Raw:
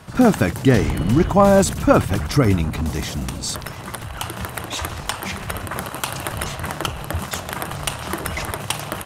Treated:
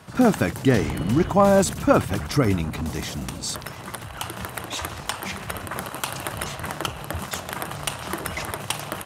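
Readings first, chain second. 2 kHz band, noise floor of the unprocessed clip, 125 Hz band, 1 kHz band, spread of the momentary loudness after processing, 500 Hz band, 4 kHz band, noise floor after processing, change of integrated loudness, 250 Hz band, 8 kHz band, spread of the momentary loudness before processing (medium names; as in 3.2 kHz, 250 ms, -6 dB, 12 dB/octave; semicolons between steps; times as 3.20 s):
-3.0 dB, -34 dBFS, -5.0 dB, -3.0 dB, 12 LU, -3.0 dB, -3.0 dB, -38 dBFS, -3.5 dB, -3.5 dB, -3.0 dB, 12 LU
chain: high-pass 99 Hz 6 dB/octave; trim -3 dB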